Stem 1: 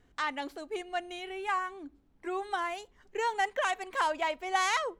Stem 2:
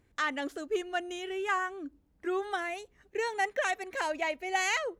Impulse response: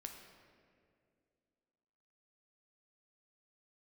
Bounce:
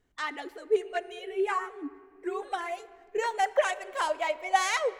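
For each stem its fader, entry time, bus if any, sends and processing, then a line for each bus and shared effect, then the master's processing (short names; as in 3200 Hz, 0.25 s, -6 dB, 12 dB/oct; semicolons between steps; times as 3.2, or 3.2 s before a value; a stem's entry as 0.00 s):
-2.5 dB, 0.00 s, send -3.5 dB, high shelf 5400 Hz +7 dB; upward expander 1.5:1, over -42 dBFS
-2.0 dB, 0.00 s, send -4.5 dB, sine-wave speech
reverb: on, RT60 2.3 s, pre-delay 8 ms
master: dry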